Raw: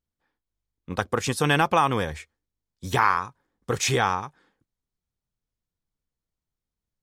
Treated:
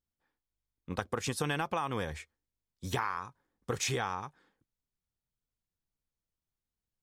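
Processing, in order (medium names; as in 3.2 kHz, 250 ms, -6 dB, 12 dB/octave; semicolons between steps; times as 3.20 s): compression 6:1, threshold -24 dBFS, peak gain reduction 9.5 dB; trim -5 dB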